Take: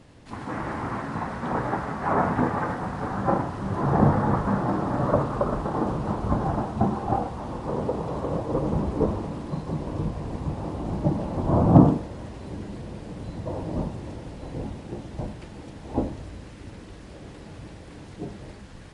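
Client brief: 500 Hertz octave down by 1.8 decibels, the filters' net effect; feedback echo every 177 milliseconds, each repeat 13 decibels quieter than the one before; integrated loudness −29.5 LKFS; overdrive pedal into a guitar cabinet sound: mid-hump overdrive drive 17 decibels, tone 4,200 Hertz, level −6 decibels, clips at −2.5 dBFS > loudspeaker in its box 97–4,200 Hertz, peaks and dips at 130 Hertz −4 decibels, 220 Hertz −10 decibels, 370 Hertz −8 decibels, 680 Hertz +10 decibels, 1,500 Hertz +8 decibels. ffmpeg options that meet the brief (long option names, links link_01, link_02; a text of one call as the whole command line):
ffmpeg -i in.wav -filter_complex "[0:a]equalizer=frequency=500:width_type=o:gain=-8,aecho=1:1:177|354|531:0.224|0.0493|0.0108,asplit=2[link_01][link_02];[link_02]highpass=frequency=720:poles=1,volume=17dB,asoftclip=type=tanh:threshold=-2.5dB[link_03];[link_01][link_03]amix=inputs=2:normalize=0,lowpass=frequency=4200:poles=1,volume=-6dB,highpass=97,equalizer=frequency=130:width_type=q:width=4:gain=-4,equalizer=frequency=220:width_type=q:width=4:gain=-10,equalizer=frequency=370:width_type=q:width=4:gain=-8,equalizer=frequency=680:width_type=q:width=4:gain=10,equalizer=frequency=1500:width_type=q:width=4:gain=8,lowpass=frequency=4200:width=0.5412,lowpass=frequency=4200:width=1.3066,volume=-9dB" out.wav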